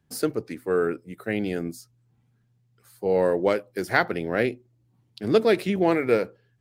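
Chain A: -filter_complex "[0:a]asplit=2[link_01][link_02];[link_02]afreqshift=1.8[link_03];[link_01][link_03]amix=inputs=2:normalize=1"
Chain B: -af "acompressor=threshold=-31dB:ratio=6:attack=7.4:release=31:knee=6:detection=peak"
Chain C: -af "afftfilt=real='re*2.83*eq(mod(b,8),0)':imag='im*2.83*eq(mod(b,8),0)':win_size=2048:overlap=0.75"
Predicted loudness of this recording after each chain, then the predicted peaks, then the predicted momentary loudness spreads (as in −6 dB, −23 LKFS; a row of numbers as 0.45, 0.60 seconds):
−28.0, −33.5, −27.5 LKFS; −9.5, −14.5, −5.5 dBFS; 13, 8, 15 LU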